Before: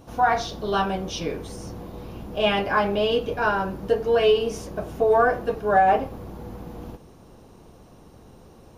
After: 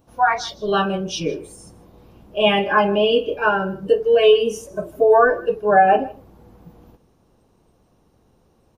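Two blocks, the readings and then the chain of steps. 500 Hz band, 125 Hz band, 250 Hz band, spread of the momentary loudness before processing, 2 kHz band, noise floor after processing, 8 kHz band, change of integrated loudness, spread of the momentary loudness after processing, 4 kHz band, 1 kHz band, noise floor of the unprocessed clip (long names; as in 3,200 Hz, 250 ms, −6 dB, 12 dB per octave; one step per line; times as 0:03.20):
+5.0 dB, +0.5 dB, +3.5 dB, 19 LU, +4.5 dB, −60 dBFS, can't be measured, +5.0 dB, 13 LU, +5.0 dB, +3.5 dB, −50 dBFS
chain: noise reduction from a noise print of the clip's start 16 dB
single-tap delay 157 ms −21 dB
level +5.5 dB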